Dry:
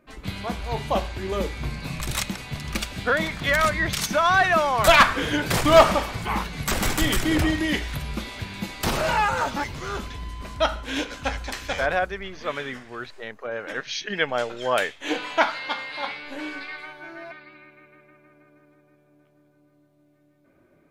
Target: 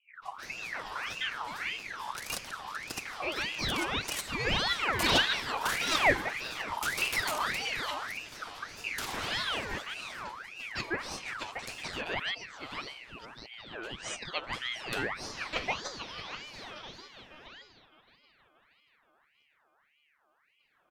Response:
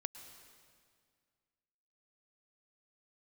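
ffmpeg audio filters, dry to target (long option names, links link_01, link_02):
-filter_complex "[0:a]acrossover=split=340|1100[link_01][link_02][link_03];[link_03]adelay=150[link_04];[link_02]adelay=300[link_05];[link_01][link_05][link_04]amix=inputs=3:normalize=0,aeval=exprs='val(0)*sin(2*PI*1800*n/s+1800*0.5/1.7*sin(2*PI*1.7*n/s))':channel_layout=same,volume=-6dB"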